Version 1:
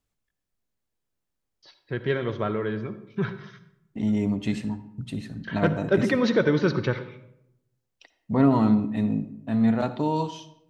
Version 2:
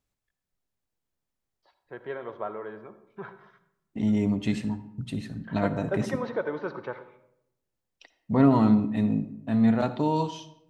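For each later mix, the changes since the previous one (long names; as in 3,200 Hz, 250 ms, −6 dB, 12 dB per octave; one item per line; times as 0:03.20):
first voice: add resonant band-pass 820 Hz, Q 1.9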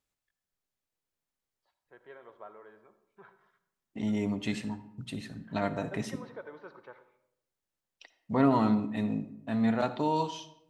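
first voice −12.0 dB
master: add low-shelf EQ 330 Hz −9 dB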